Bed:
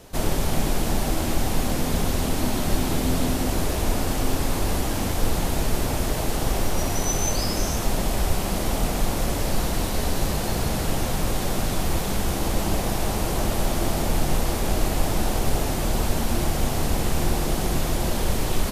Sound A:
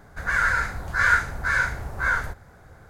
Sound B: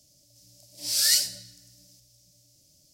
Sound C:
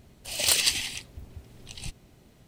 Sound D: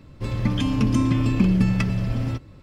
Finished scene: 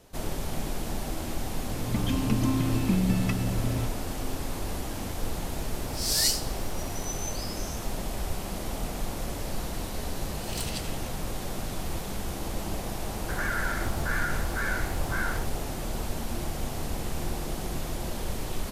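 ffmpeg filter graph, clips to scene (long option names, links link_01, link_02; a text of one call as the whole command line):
ffmpeg -i bed.wav -i cue0.wav -i cue1.wav -i cue2.wav -i cue3.wav -filter_complex "[0:a]volume=-9dB[link_01];[4:a]dynaudnorm=framelen=290:gausssize=3:maxgain=11.5dB[link_02];[2:a]acrusher=bits=8:mode=log:mix=0:aa=0.000001[link_03];[1:a]acompressor=threshold=-28dB:ratio=6:attack=3.2:release=140:knee=1:detection=peak[link_04];[link_02]atrim=end=2.62,asetpts=PTS-STARTPTS,volume=-12.5dB,afade=type=in:duration=0.004:curve=hsin,afade=type=out:start_time=2.616:duration=0.004:curve=hsin,adelay=1490[link_05];[link_03]atrim=end=2.93,asetpts=PTS-STARTPTS,volume=-3.5dB,afade=type=in:duration=0.004:curve=hsin,afade=type=out:start_time=2.926:duration=0.004:curve=hsin,adelay=226233S[link_06];[3:a]atrim=end=2.47,asetpts=PTS-STARTPTS,volume=-14.5dB,afade=type=in:duration=0.004:curve=hsin,afade=type=out:start_time=2.466:duration=0.004:curve=hsin,adelay=10090[link_07];[link_04]atrim=end=2.89,asetpts=PTS-STARTPTS,afade=type=in:duration=0.004:curve=hsin,afade=type=out:start_time=2.886:duration=0.004:curve=hsin,adelay=13120[link_08];[link_01][link_05][link_06][link_07][link_08]amix=inputs=5:normalize=0" out.wav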